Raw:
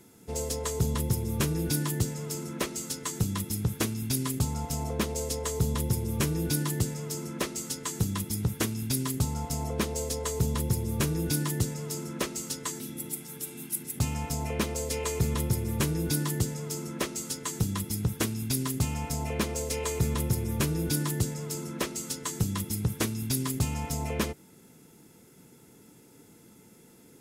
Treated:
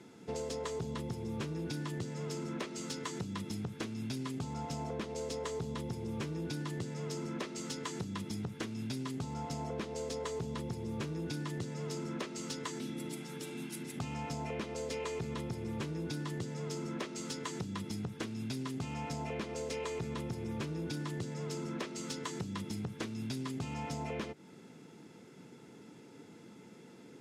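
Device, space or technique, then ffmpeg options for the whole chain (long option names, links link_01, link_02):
AM radio: -af "highpass=140,lowpass=4500,acompressor=threshold=-37dB:ratio=6,asoftclip=type=tanh:threshold=-31dB,volume=2.5dB"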